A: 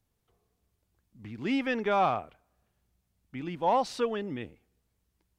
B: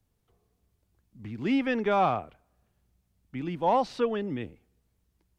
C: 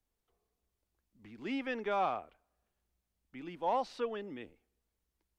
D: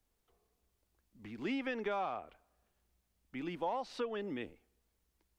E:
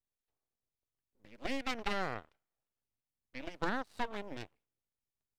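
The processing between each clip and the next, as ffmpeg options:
-filter_complex "[0:a]lowshelf=f=460:g=4.5,acrossover=split=260|4600[a][b][c];[c]alimiter=level_in=22.5dB:limit=-24dB:level=0:latency=1:release=381,volume=-22.5dB[d];[a][b][d]amix=inputs=3:normalize=0"
-af "equalizer=f=120:w=0.85:g=-14,volume=-7dB"
-af "acompressor=threshold=-39dB:ratio=5,volume=5dB"
-af "aeval=exprs='0.0631*(cos(1*acos(clip(val(0)/0.0631,-1,1)))-cos(1*PI/2))+0.0158*(cos(3*acos(clip(val(0)/0.0631,-1,1)))-cos(3*PI/2))+0.00562*(cos(4*acos(clip(val(0)/0.0631,-1,1)))-cos(4*PI/2))+0.00708*(cos(6*acos(clip(val(0)/0.0631,-1,1)))-cos(6*PI/2))+0.00158*(cos(7*acos(clip(val(0)/0.0631,-1,1)))-cos(7*PI/2))':c=same,aeval=exprs='abs(val(0))':c=same,volume=7.5dB"

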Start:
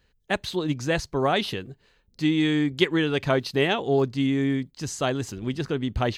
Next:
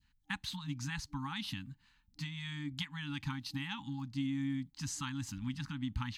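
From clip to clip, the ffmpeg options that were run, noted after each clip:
-af "adynamicequalizer=threshold=0.0126:dfrequency=1500:dqfactor=0.72:tfrequency=1500:tqfactor=0.72:attack=5:release=100:ratio=0.375:range=2.5:mode=cutabove:tftype=bell,acompressor=threshold=-26dB:ratio=6,afftfilt=real='re*(1-between(b*sr/4096,300,800))':imag='im*(1-between(b*sr/4096,300,800))':win_size=4096:overlap=0.75,volume=-6dB"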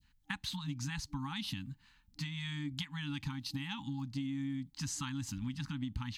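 -af "adynamicequalizer=threshold=0.00158:dfrequency=1500:dqfactor=0.91:tfrequency=1500:tqfactor=0.91:attack=5:release=100:ratio=0.375:range=2.5:mode=cutabove:tftype=bell,acompressor=threshold=-38dB:ratio=6,volume=3.5dB"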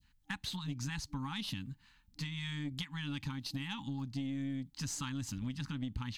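-af "aeval=exprs='(tanh(28.2*val(0)+0.3)-tanh(0.3))/28.2':c=same,volume=1dB"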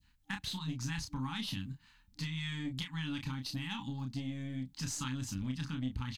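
-filter_complex "[0:a]asplit=2[a][b];[b]adelay=31,volume=-5.5dB[c];[a][c]amix=inputs=2:normalize=0"

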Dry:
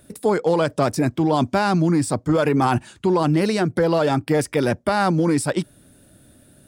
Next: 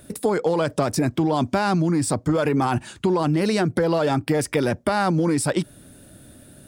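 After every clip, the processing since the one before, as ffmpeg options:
-filter_complex "[0:a]asplit=2[a][b];[b]alimiter=limit=-18dB:level=0:latency=1:release=20,volume=-3dB[c];[a][c]amix=inputs=2:normalize=0,acompressor=threshold=-17dB:ratio=6"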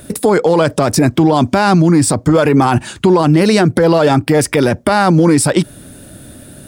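-af "alimiter=level_in=12dB:limit=-1dB:release=50:level=0:latency=1,volume=-1dB"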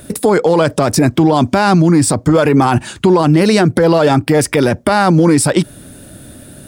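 -af anull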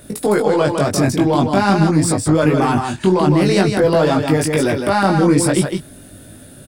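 -filter_complex "[0:a]asplit=2[a][b];[b]aecho=0:1:158:0.531[c];[a][c]amix=inputs=2:normalize=0,flanger=delay=19:depth=2.2:speed=0.46,aeval=exprs='1.06*(cos(1*acos(clip(val(0)/1.06,-1,1)))-cos(1*PI/2))+0.0106*(cos(8*acos(clip(val(0)/1.06,-1,1)))-cos(8*PI/2))':c=same,volume=-1.5dB"

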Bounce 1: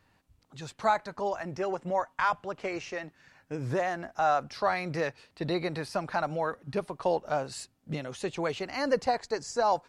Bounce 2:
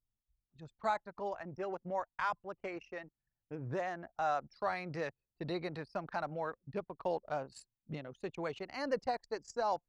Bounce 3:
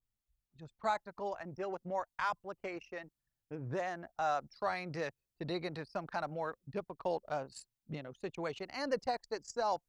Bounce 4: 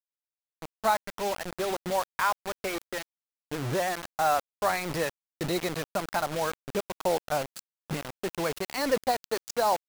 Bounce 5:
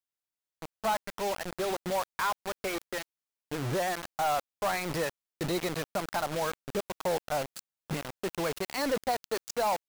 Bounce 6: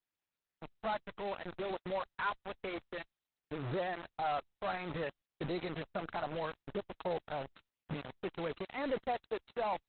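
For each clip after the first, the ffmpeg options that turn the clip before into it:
-af "anlmdn=1,volume=-8dB"
-af "adynamicequalizer=threshold=0.00251:dfrequency=3400:dqfactor=0.7:tfrequency=3400:tqfactor=0.7:attack=5:release=100:ratio=0.375:range=2.5:mode=boostabove:tftype=highshelf"
-af "acrusher=bits=6:mix=0:aa=0.000001,volume=8.5dB"
-af "asoftclip=type=tanh:threshold=-22.5dB"
-af "volume=-5dB" -ar 48000 -c:a libopus -b:a 8k

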